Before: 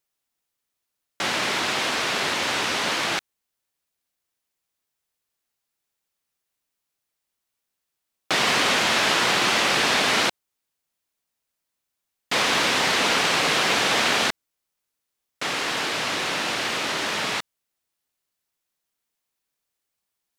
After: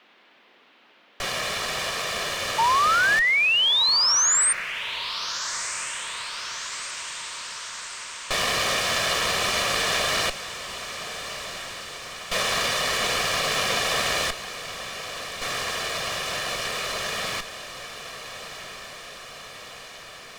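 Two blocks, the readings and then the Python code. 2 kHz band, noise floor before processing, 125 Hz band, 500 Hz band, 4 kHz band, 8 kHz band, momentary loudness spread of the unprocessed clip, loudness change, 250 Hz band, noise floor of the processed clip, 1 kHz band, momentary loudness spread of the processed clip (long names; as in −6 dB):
−0.5 dB, −82 dBFS, −1.0 dB, −2.0 dB, +0.5 dB, +5.0 dB, 7 LU, −2.0 dB, −8.5 dB, −57 dBFS, −0.5 dB, 19 LU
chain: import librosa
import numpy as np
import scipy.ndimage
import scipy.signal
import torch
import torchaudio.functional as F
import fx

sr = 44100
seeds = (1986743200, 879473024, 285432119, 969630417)

p1 = fx.lower_of_two(x, sr, delay_ms=1.7)
p2 = fx.dmg_noise_band(p1, sr, seeds[0], low_hz=210.0, high_hz=3300.0, level_db=-55.0)
p3 = fx.spec_paint(p2, sr, seeds[1], shape='rise', start_s=2.58, length_s=1.95, low_hz=880.0, high_hz=9000.0, level_db=-18.0)
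p4 = p3 + fx.echo_diffused(p3, sr, ms=1371, feedback_pct=69, wet_db=-11.5, dry=0)
y = F.gain(torch.from_numpy(p4), -2.0).numpy()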